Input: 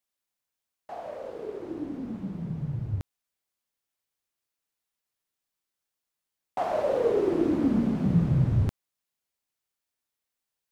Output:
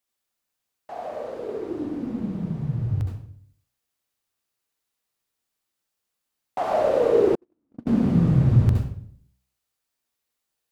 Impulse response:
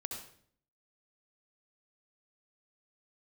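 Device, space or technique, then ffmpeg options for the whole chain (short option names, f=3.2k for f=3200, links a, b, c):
bathroom: -filter_complex "[0:a]bandreject=f=63.14:t=h:w=4,bandreject=f=126.28:t=h:w=4,bandreject=f=189.42:t=h:w=4,bandreject=f=252.56:t=h:w=4[a];[1:a]atrim=start_sample=2205[b];[a][b]afir=irnorm=-1:irlink=0,asettb=1/sr,asplit=3[c][d][e];[c]atrim=end=7.354[f];[d]atrim=start=7.35:end=7.87,asetpts=PTS-STARTPTS,afade=t=in:d=0.004:c=qsin,afade=t=out:st=0.516:d=0.004:c=qsin,agate=range=-56dB:threshold=-16dB:ratio=16:detection=peak[g];[e]atrim=start=7.866[h];[f][g]acrossfade=d=0.004:c1=hsin:c2=qsin[i];[i][h]acrossfade=d=0.004:c1=qsin:c2=hsin,volume=5.5dB"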